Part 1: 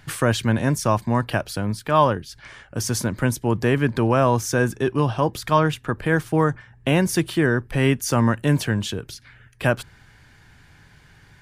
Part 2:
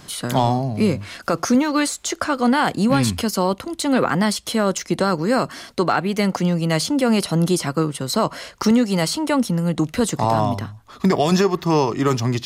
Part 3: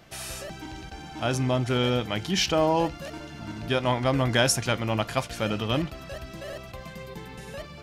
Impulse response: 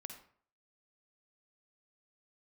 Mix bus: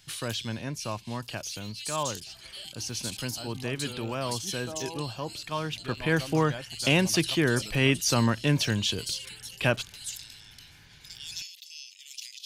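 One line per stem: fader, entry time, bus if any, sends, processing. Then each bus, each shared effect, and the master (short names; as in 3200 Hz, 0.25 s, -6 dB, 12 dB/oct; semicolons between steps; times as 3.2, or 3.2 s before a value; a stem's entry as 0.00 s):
5.61 s -14.5 dB -> 6.03 s -5.5 dB, 0.00 s, no send, band shelf 3800 Hz +9 dB
-9.5 dB, 0.00 s, no send, steep high-pass 2700 Hz 48 dB/oct; sustainer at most 86 dB/s
-16.5 dB, 2.15 s, no send, reverb removal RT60 0.55 s; LPF 3600 Hz 12 dB/oct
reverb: off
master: dry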